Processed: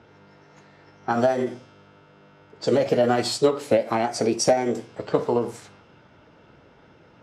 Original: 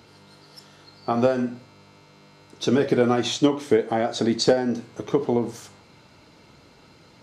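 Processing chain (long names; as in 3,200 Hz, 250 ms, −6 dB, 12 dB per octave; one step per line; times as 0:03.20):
formants moved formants +4 semitones
low-pass that shuts in the quiet parts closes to 2,200 Hz, open at −21 dBFS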